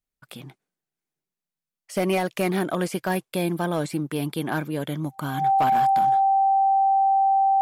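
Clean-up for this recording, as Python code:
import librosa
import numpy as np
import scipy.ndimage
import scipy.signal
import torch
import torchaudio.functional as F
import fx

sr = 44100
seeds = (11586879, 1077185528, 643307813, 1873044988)

y = fx.fix_declip(x, sr, threshold_db=-15.5)
y = fx.notch(y, sr, hz=780.0, q=30.0)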